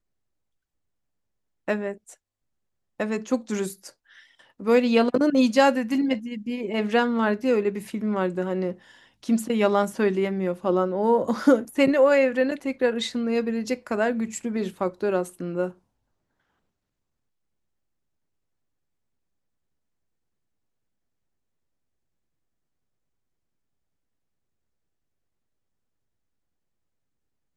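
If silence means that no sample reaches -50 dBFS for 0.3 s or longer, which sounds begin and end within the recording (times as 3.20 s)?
1.68–2.14 s
3.00–15.77 s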